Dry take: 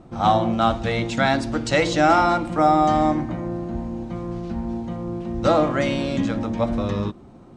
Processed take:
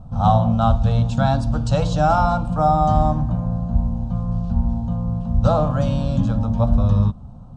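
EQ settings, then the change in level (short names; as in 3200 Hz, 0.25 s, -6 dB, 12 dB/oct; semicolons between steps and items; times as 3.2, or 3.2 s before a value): tone controls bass +5 dB, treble -5 dB; low shelf 190 Hz +11 dB; fixed phaser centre 850 Hz, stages 4; 0.0 dB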